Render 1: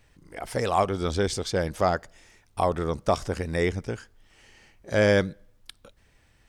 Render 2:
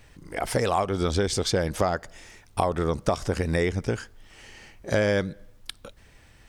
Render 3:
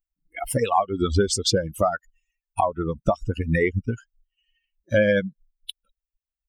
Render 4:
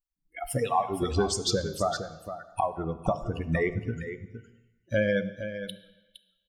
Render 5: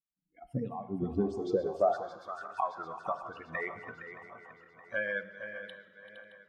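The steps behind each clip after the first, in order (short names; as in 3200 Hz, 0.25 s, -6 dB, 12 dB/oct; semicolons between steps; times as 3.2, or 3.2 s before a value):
compressor 6:1, threshold -28 dBFS, peak gain reduction 11 dB; gain +7.5 dB
per-bin expansion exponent 3; gain +9 dB
echo 0.463 s -10.5 dB; on a send at -11 dB: reverb RT60 1.1 s, pre-delay 3 ms; on the sum: gain -6 dB
regenerating reverse delay 0.31 s, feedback 74%, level -14 dB; band-pass sweep 200 Hz -> 1300 Hz, 1.08–2.35; gain +3 dB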